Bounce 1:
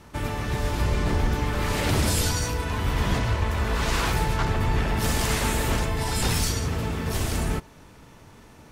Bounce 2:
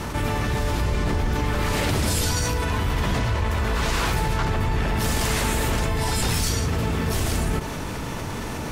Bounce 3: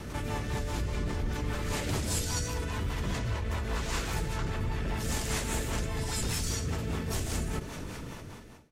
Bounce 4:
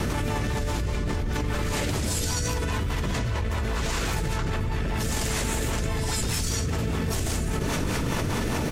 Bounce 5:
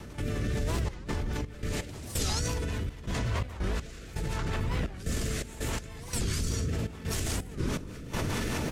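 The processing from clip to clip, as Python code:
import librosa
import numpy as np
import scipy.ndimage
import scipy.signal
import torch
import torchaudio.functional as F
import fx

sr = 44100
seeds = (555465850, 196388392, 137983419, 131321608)

y1 = fx.env_flatten(x, sr, amount_pct=70)
y1 = y1 * librosa.db_to_amplitude(-2.0)
y2 = fx.fade_out_tail(y1, sr, length_s=0.78)
y2 = fx.dynamic_eq(y2, sr, hz=7100.0, q=1.8, threshold_db=-45.0, ratio=4.0, max_db=5)
y2 = fx.rotary(y2, sr, hz=5.0)
y2 = y2 * librosa.db_to_amplitude(-7.5)
y3 = fx.env_flatten(y2, sr, amount_pct=100)
y3 = y3 * librosa.db_to_amplitude(1.5)
y4 = fx.rotary(y3, sr, hz=0.8)
y4 = fx.step_gate(y4, sr, bpm=83, pattern='.xxxx.xx.x.', floor_db=-12.0, edge_ms=4.5)
y4 = fx.record_warp(y4, sr, rpm=45.0, depth_cents=250.0)
y4 = y4 * librosa.db_to_amplitude(-2.0)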